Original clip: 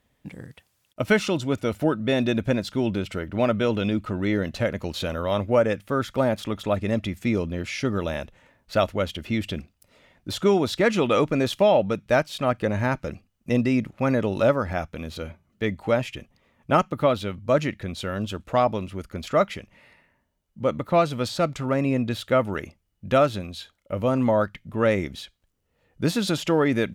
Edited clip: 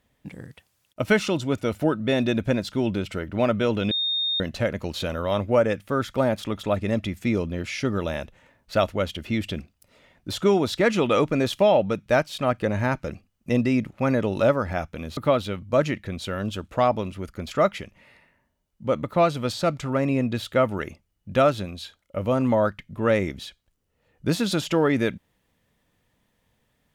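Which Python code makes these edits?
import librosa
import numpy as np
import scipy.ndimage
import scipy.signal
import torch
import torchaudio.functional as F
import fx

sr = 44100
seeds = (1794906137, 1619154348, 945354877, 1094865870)

y = fx.edit(x, sr, fx.bleep(start_s=3.91, length_s=0.49, hz=3680.0, db=-22.0),
    fx.cut(start_s=15.17, length_s=1.76), tone=tone)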